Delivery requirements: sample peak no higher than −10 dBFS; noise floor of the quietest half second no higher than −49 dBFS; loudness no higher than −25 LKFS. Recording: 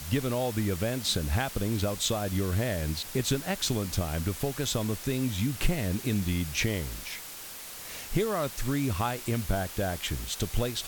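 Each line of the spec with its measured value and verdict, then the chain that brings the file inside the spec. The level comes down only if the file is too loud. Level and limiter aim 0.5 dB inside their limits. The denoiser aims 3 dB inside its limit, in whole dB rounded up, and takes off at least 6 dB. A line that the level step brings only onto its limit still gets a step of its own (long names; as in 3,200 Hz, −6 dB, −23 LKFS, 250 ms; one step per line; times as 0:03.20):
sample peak −12.0 dBFS: in spec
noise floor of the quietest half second −42 dBFS: out of spec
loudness −30.0 LKFS: in spec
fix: broadband denoise 10 dB, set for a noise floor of −42 dBFS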